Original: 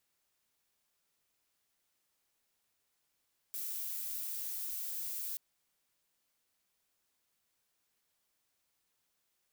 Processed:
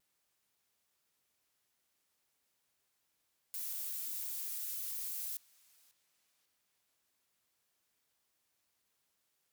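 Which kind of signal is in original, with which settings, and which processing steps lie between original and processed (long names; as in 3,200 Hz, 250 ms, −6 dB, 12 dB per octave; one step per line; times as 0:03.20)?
noise violet, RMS −39.5 dBFS 1.83 s
high-pass filter 40 Hz
tape delay 543 ms, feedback 55%, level −15.5 dB, low-pass 3,800 Hz
pitch modulation by a square or saw wave saw down 5.9 Hz, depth 160 cents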